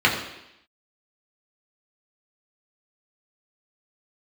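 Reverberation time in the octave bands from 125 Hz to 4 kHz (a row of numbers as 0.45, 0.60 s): 0.70, 0.85, 0.80, 0.85, 0.90, 0.90 s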